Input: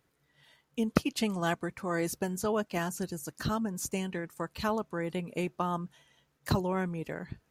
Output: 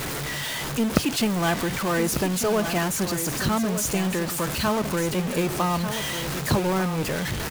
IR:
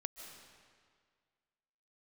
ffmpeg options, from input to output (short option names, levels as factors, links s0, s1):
-af "aeval=exprs='val(0)+0.5*0.0398*sgn(val(0))':c=same,aecho=1:1:1195:0.335,acrusher=bits=4:mode=log:mix=0:aa=0.000001,volume=1.5"